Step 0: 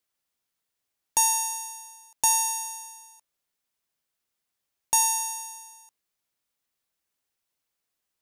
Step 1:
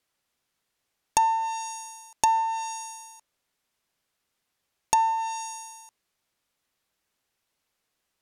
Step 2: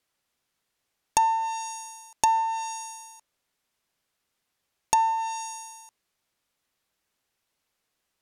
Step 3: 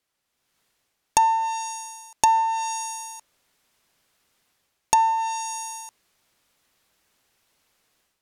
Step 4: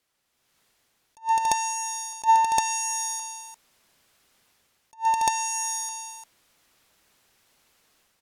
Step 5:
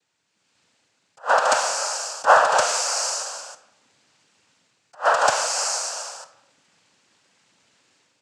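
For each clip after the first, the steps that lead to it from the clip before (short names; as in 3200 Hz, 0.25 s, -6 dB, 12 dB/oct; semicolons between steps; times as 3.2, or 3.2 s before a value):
treble ducked by the level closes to 1300 Hz, closed at -21 dBFS; high shelf 6700 Hz -7.5 dB; gain +7.5 dB
nothing audible
AGC gain up to 11.5 dB; gain -1 dB
tapped delay 0.121/0.209/0.283/0.347 s -20/-16.5/-17.5/-7 dB; attack slew limiter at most 350 dB/s; gain +3 dB
noise vocoder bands 8; digital reverb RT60 0.87 s, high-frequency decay 0.6×, pre-delay 0 ms, DRR 11 dB; gain +4.5 dB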